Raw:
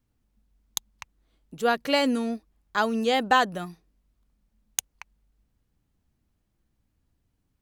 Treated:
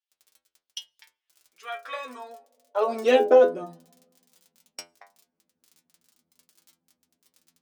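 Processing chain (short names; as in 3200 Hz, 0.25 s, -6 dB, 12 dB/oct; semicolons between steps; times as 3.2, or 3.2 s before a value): EQ curve 280 Hz 0 dB, 510 Hz +6 dB, 13000 Hz -28 dB; on a send at -23 dB: reverb RT60 1.6 s, pre-delay 3 ms; on the sum: high-pass sweep 3500 Hz -> 200 Hz, 1.06–3.88; crackle 24/s -45 dBFS; tone controls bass -8 dB, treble +12 dB; formant shift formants -3 st; metallic resonator 82 Hz, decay 0.33 s, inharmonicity 0.002; gain +8.5 dB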